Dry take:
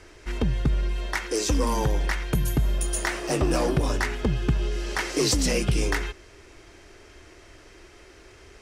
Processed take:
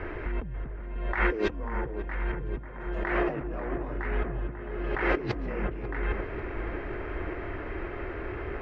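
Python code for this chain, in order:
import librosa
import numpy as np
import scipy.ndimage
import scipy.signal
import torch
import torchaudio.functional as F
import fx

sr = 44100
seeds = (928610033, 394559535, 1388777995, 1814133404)

y = scipy.signal.sosfilt(scipy.signal.butter(4, 2100.0, 'lowpass', fs=sr, output='sos'), x)
y = fx.over_compress(y, sr, threshold_db=-36.0, ratio=-1.0)
y = fx.echo_wet_lowpass(y, sr, ms=542, feedback_pct=68, hz=1600.0, wet_db=-9)
y = F.gain(torch.from_numpy(y), 4.0).numpy()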